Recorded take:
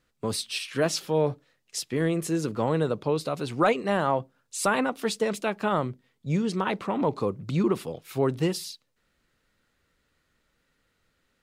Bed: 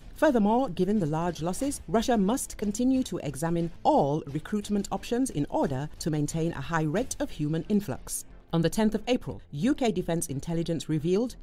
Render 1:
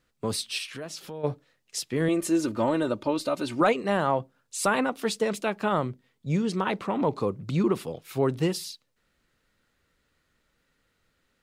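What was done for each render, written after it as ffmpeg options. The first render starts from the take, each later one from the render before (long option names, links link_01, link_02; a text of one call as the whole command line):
ffmpeg -i in.wav -filter_complex "[0:a]asplit=3[link_01][link_02][link_03];[link_01]afade=type=out:start_time=0.66:duration=0.02[link_04];[link_02]acompressor=threshold=-38dB:ratio=3:attack=3.2:release=140:knee=1:detection=peak,afade=type=in:start_time=0.66:duration=0.02,afade=type=out:start_time=1.23:duration=0.02[link_05];[link_03]afade=type=in:start_time=1.23:duration=0.02[link_06];[link_04][link_05][link_06]amix=inputs=3:normalize=0,asettb=1/sr,asplit=3[link_07][link_08][link_09];[link_07]atrim=end=2.084[link_10];[link_08]atrim=start=2.08:end=3.61,asetpts=PTS-STARTPTS,afade=type=in:duration=0.004:curve=qsin,afade=type=out:start_time=1.526:duration=0.004:curve=qsin,aecho=1:1:3.3:0.71,atrim=end_sample=67473[link_11];[link_09]atrim=start=3.606[link_12];[link_10][link_11]acrossfade=duration=0.004:curve1=hsin:curve2=qsin[link_13];[link_13][link_12]acrossfade=duration=0.004:curve1=qsin:curve2=hsin" out.wav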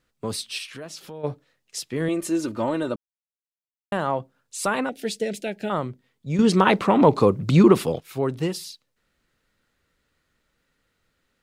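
ffmpeg -i in.wav -filter_complex "[0:a]asettb=1/sr,asplit=3[link_01][link_02][link_03];[link_01]atrim=end=4.894[link_04];[link_02]atrim=start=4.89:end=5.7,asetpts=PTS-STARTPTS,afade=type=in:duration=0.004:curve=qsin,afade=type=out:start_time=0.806:duration=0.004:curve=qsin,asuperstop=centerf=1100:order=4:qfactor=1.1[link_05];[link_03]atrim=start=5.696[link_06];[link_04][link_05]acrossfade=duration=0.004:curve1=hsin:curve2=qsin[link_07];[link_07][link_06]acrossfade=duration=0.004:curve1=qsin:curve2=hsin,asplit=5[link_08][link_09][link_10][link_11][link_12];[link_08]atrim=end=2.96,asetpts=PTS-STARTPTS,afade=type=out:start_time=2.956:duration=0.004:curve=hsin[link_13];[link_09]atrim=start=2.96:end=3.92,asetpts=PTS-STARTPTS,volume=0[link_14];[link_10]atrim=start=3.92:end=6.392,asetpts=PTS-STARTPTS,afade=type=in:duration=0.004:curve=hsin[link_15];[link_11]atrim=start=6.388:end=8.002,asetpts=PTS-STARTPTS,volume=10dB[link_16];[link_12]atrim=start=7.998[link_17];[link_13][link_14][link_15]concat=n=3:v=0:a=1[link_18];[link_18][link_16]acrossfade=duration=0.004:curve1=hsin:curve2=hsin[link_19];[link_19][link_17]acrossfade=duration=0.004:curve1=hsin:curve2=hsin" out.wav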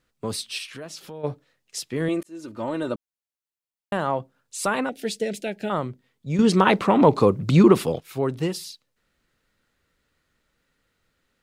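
ffmpeg -i in.wav -filter_complex "[0:a]asplit=2[link_01][link_02];[link_01]atrim=end=2.23,asetpts=PTS-STARTPTS,afade=type=out:start_time=2.226:duration=0.004:curve=hsin[link_03];[link_02]atrim=start=2.23,asetpts=PTS-STARTPTS,afade=type=in:duration=0.69[link_04];[link_03][link_04]concat=n=2:v=0:a=1" out.wav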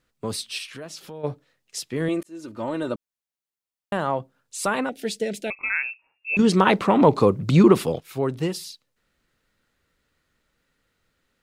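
ffmpeg -i in.wav -filter_complex "[0:a]asettb=1/sr,asplit=3[link_01][link_02][link_03];[link_01]atrim=end=5.504[link_04];[link_02]atrim=start=5.5:end=6.37,asetpts=PTS-STARTPTS,afade=type=in:duration=0.004:curve=qsin,afade=type=out:start_time=0.866:duration=0.004:curve=qsin,lowpass=frequency=2400:width_type=q:width=0.5098,lowpass=frequency=2400:width_type=q:width=0.6013,lowpass=frequency=2400:width_type=q:width=0.9,lowpass=frequency=2400:width_type=q:width=2.563,afreqshift=-2800[link_05];[link_03]atrim=start=6.366[link_06];[link_04][link_05]acrossfade=duration=0.004:curve1=hsin:curve2=qsin[link_07];[link_07][link_06]acrossfade=duration=0.004:curve1=qsin:curve2=hsin" out.wav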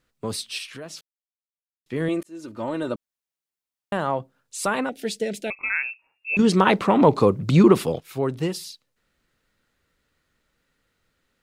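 ffmpeg -i in.wav -filter_complex "[0:a]asplit=3[link_01][link_02][link_03];[link_01]atrim=end=1.01,asetpts=PTS-STARTPTS,afade=type=out:start_time=1.006:duration=0.004:curve=hsin[link_04];[link_02]atrim=start=1.01:end=1.86,asetpts=PTS-STARTPTS,volume=0[link_05];[link_03]atrim=start=1.86,asetpts=PTS-STARTPTS,afade=type=in:duration=0.004:curve=hsin[link_06];[link_04][link_05][link_06]concat=n=3:v=0:a=1" out.wav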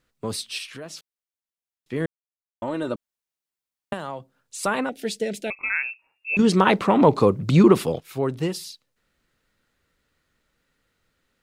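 ffmpeg -i in.wav -filter_complex "[0:a]asettb=1/sr,asplit=3[link_01][link_02][link_03];[link_01]atrim=end=3.934[link_04];[link_02]atrim=start=3.93:end=4.63,asetpts=PTS-STARTPTS,afade=type=in:duration=0.004:curve=qsin,afade=type=out:start_time=0.696:duration=0.004:curve=qsin,acrossover=split=110|3000[link_05][link_06][link_07];[link_05]acompressor=threshold=-55dB:ratio=4[link_08];[link_06]acompressor=threshold=-30dB:ratio=4[link_09];[link_07]acompressor=threshold=-33dB:ratio=4[link_10];[link_08][link_09][link_10]amix=inputs=3:normalize=0[link_11];[link_03]atrim=start=4.626[link_12];[link_04][link_11]acrossfade=duration=0.004:curve1=hsin:curve2=qsin[link_13];[link_13][link_12]acrossfade=duration=0.004:curve1=qsin:curve2=hsin,asplit=3[link_14][link_15][link_16];[link_14]atrim=end=2.06,asetpts=PTS-STARTPTS,afade=type=out:start_time=2.056:duration=0.004:curve=hsin[link_17];[link_15]atrim=start=2.06:end=2.62,asetpts=PTS-STARTPTS,volume=0[link_18];[link_16]atrim=start=2.62,asetpts=PTS-STARTPTS,afade=type=in:duration=0.004:curve=hsin[link_19];[link_17][link_18][link_19]concat=n=3:v=0:a=1" out.wav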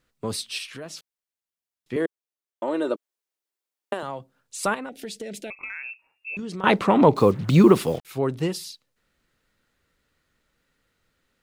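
ffmpeg -i in.wav -filter_complex "[0:a]asettb=1/sr,asplit=3[link_01][link_02][link_03];[link_01]atrim=end=1.964[link_04];[link_02]atrim=start=1.96:end=4.03,asetpts=PTS-STARTPTS,afade=type=in:duration=0.004:curve=qsin,afade=type=out:start_time=2.066:duration=0.004:curve=qsin,highpass=frequency=360:width_type=q:width=1.6[link_05];[link_03]atrim=start=4.026[link_06];[link_04][link_05]acrossfade=duration=0.004:curve1=hsin:curve2=qsin[link_07];[link_07][link_06]acrossfade=duration=0.004:curve1=qsin:curve2=hsin,asettb=1/sr,asplit=3[link_08][link_09][link_10];[link_08]atrim=end=4.744[link_11];[link_09]atrim=start=4.74:end=6.64,asetpts=PTS-STARTPTS,afade=type=in:duration=0.004:curve=qsin,afade=type=out:start_time=1.896:duration=0.004:curve=qsin,acompressor=threshold=-31dB:ratio=6:attack=3.2:release=140:knee=1:detection=peak[link_12];[link_10]atrim=start=6.636[link_13];[link_11][link_12]acrossfade=duration=0.004:curve1=hsin:curve2=qsin[link_14];[link_14][link_13]acrossfade=duration=0.004:curve1=qsin:curve2=hsin,asettb=1/sr,asplit=3[link_15][link_16][link_17];[link_15]atrim=end=7.164[link_18];[link_16]atrim=start=7.16:end=8.05,asetpts=PTS-STARTPTS,afade=type=in:duration=0.004:curve=qsin,afade=type=out:start_time=0.886:duration=0.004:curve=qsin,acrusher=bits=6:mix=0:aa=0.5[link_19];[link_17]atrim=start=8.046[link_20];[link_18][link_19]acrossfade=duration=0.004:curve1=hsin:curve2=qsin[link_21];[link_21][link_20]acrossfade=duration=0.004:curve1=qsin:curve2=hsin" out.wav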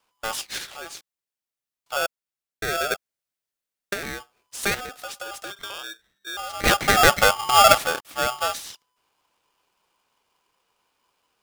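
ffmpeg -i in.wav -filter_complex "[0:a]acrossover=split=200|960|4500[link_01][link_02][link_03][link_04];[link_01]acrusher=samples=35:mix=1:aa=0.000001[link_05];[link_05][link_02][link_03][link_04]amix=inputs=4:normalize=0,aeval=exprs='val(0)*sgn(sin(2*PI*1000*n/s))':channel_layout=same" out.wav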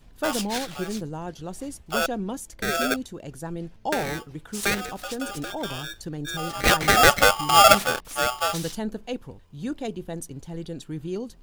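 ffmpeg -i in.wav -i bed.wav -filter_complex "[1:a]volume=-5.5dB[link_01];[0:a][link_01]amix=inputs=2:normalize=0" out.wav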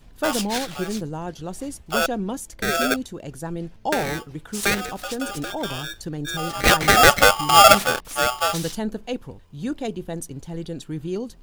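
ffmpeg -i in.wav -af "volume=3dB,alimiter=limit=-1dB:level=0:latency=1" out.wav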